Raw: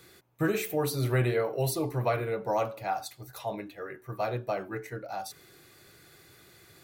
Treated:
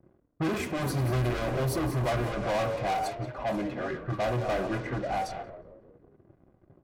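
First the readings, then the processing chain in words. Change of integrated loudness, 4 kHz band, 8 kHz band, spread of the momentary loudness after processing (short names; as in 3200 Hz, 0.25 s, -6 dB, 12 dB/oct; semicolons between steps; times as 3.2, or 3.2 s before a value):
+1.0 dB, +2.0 dB, -2.5 dB, 6 LU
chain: reverse delay 0.229 s, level -14 dB; high shelf 2300 Hz -11.5 dB; notch 3800 Hz, Q 6.7; sample leveller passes 5; notch comb 450 Hz; frequency-shifting echo 0.181 s, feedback 54%, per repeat -72 Hz, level -11.5 dB; low-pass opened by the level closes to 450 Hz, open at -19 dBFS; gain -6.5 dB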